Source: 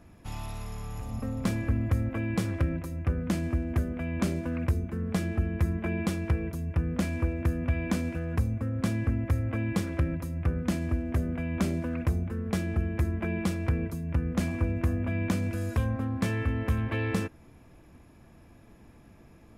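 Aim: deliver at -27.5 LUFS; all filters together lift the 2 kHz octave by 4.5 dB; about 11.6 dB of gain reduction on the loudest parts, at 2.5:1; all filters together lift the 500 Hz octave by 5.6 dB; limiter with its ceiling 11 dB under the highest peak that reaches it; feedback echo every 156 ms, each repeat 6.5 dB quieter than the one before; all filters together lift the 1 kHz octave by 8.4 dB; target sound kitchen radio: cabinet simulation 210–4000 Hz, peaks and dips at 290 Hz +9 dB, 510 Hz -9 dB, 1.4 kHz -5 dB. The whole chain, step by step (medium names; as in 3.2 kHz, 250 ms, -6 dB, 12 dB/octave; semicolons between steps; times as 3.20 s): peaking EQ 500 Hz +8.5 dB; peaking EQ 1 kHz +8.5 dB; peaking EQ 2 kHz +4 dB; compression 2.5:1, threshold -38 dBFS; peak limiter -29.5 dBFS; cabinet simulation 210–4000 Hz, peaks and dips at 290 Hz +9 dB, 510 Hz -9 dB, 1.4 kHz -5 dB; feedback delay 156 ms, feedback 47%, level -6.5 dB; trim +13 dB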